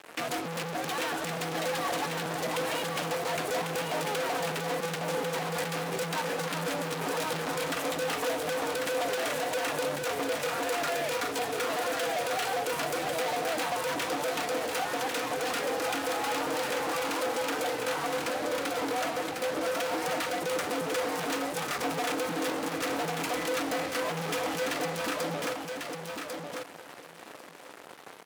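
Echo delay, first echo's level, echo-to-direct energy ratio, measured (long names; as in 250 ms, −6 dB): 1,096 ms, −5.0 dB, −5.0 dB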